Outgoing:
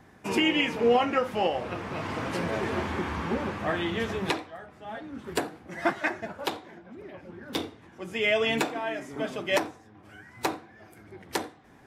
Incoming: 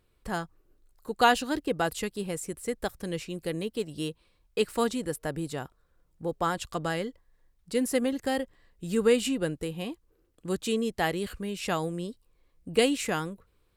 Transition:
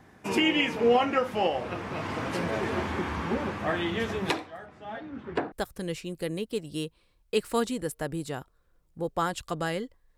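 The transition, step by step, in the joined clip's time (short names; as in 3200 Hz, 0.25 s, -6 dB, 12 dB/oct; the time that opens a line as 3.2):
outgoing
4.65–5.52 LPF 9500 Hz -> 1600 Hz
5.52 switch to incoming from 2.76 s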